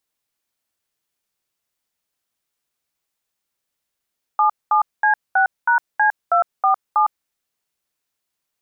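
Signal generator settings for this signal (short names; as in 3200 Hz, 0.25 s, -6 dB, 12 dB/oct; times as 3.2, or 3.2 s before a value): DTMF "77C6#C247", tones 0.107 s, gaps 0.214 s, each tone -15 dBFS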